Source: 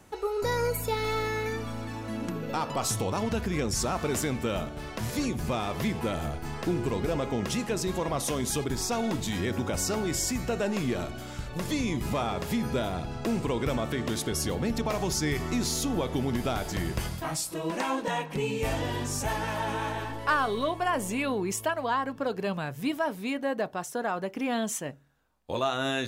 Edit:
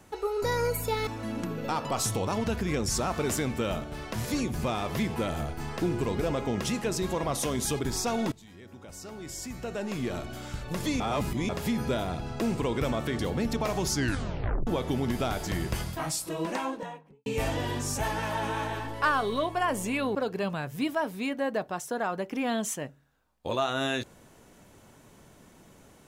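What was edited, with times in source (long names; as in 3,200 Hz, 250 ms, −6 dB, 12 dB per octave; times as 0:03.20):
0:01.07–0:01.92: remove
0:09.17–0:11.23: fade in quadratic, from −21 dB
0:11.85–0:12.34: reverse
0:14.04–0:14.44: remove
0:15.19: tape stop 0.73 s
0:17.63–0:18.51: fade out and dull
0:21.40–0:22.19: remove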